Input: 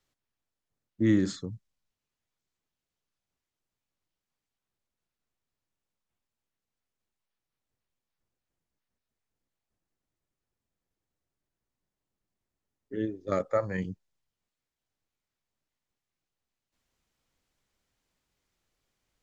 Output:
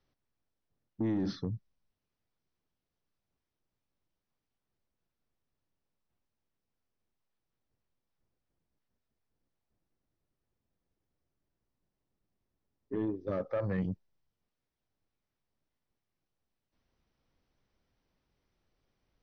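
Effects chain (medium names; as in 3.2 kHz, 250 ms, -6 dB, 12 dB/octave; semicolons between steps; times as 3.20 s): tilt shelf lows +4.5 dB, about 1.1 kHz; peak limiter -21.5 dBFS, peak gain reduction 11.5 dB; saturation -25 dBFS, distortion -17 dB; brick-wall FIR low-pass 6.2 kHz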